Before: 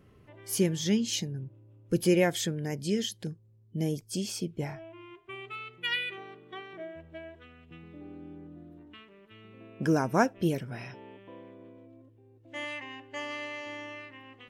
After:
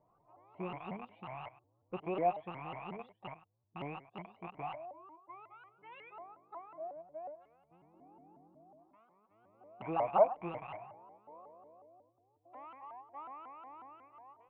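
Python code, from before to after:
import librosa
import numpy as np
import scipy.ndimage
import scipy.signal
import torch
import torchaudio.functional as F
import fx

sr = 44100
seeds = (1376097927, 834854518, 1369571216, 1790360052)

y = fx.rattle_buzz(x, sr, strikes_db=-41.0, level_db=-17.0)
y = fx.formant_cascade(y, sr, vowel='a')
y = y + 0.67 * np.pad(y, (int(6.0 * sr / 1000.0), 0))[:len(y)]
y = y + 10.0 ** (-16.0 / 20.0) * np.pad(y, (int(101 * sr / 1000.0), 0))[:len(y)]
y = fx.vibrato_shape(y, sr, shape='saw_up', rate_hz=5.5, depth_cents=250.0)
y = F.gain(torch.from_numpy(y), 6.0).numpy()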